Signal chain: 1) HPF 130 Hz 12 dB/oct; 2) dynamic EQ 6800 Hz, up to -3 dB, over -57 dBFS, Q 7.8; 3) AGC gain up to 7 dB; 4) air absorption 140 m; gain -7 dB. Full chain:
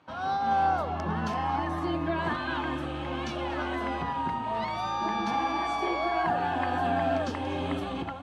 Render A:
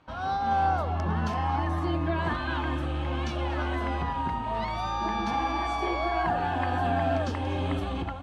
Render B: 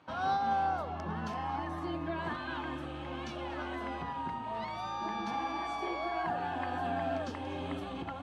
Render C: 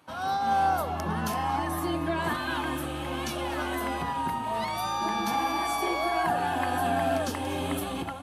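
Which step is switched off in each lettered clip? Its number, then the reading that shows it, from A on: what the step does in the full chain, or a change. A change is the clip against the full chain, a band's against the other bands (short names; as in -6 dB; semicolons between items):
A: 1, 125 Hz band +7.0 dB; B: 3, momentary loudness spread change +2 LU; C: 4, 8 kHz band +12.0 dB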